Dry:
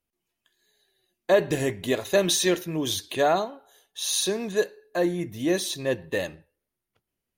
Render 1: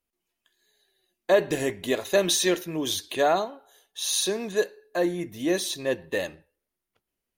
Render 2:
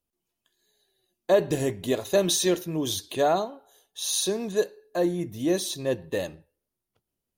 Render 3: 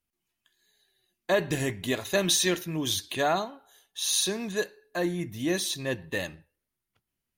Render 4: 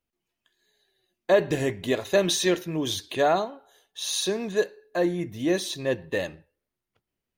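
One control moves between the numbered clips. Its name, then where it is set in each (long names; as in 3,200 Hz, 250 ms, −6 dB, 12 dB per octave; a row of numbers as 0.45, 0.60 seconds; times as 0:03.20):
parametric band, centre frequency: 120, 2,000, 490, 12,000 Hertz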